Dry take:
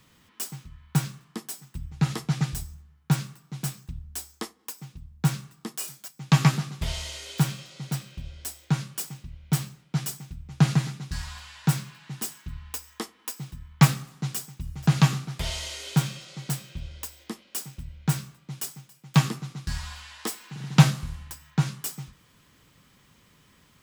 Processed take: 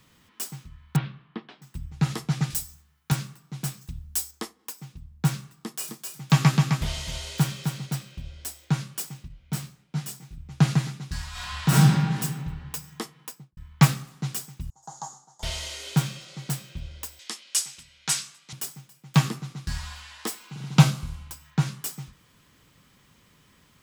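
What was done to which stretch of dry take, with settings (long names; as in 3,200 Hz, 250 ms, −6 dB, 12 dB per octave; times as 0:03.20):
0:00.96–0:01.62: Butterworth low-pass 3,600 Hz
0:02.50–0:03.12: spectral tilt +2.5 dB per octave
0:03.81–0:04.31: high-shelf EQ 3,700 Hz +9 dB
0:05.52–0:07.86: single-tap delay 260 ms −5.5 dB
0:09.28–0:10.38: micro pitch shift up and down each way 31 cents
0:11.30–0:12.16: thrown reverb, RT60 1.7 s, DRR −9.5 dB
0:13.17–0:13.57: fade out and dull
0:14.70–0:15.43: pair of resonant band-passes 2,400 Hz, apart 3 octaves
0:17.19–0:18.53: meter weighting curve ITU-R 468
0:20.38–0:21.45: notch filter 1,800 Hz, Q 6.6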